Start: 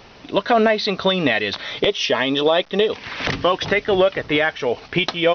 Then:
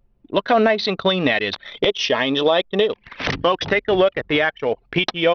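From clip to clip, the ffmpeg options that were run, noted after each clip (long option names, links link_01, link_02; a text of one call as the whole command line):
ffmpeg -i in.wav -af "anlmdn=251" out.wav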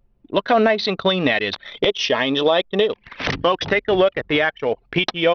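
ffmpeg -i in.wav -af anull out.wav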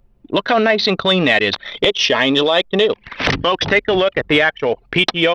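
ffmpeg -i in.wav -filter_complex "[0:a]acrossover=split=1400[link_01][link_02];[link_01]alimiter=limit=-15dB:level=0:latency=1:release=31[link_03];[link_03][link_02]amix=inputs=2:normalize=0,acontrast=25,volume=1.5dB" out.wav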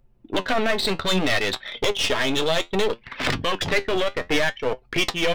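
ffmpeg -i in.wav -af "aeval=exprs='clip(val(0),-1,0.0841)':channel_layout=same,flanger=delay=7.8:depth=5.2:regen=63:speed=0.63:shape=sinusoidal" out.wav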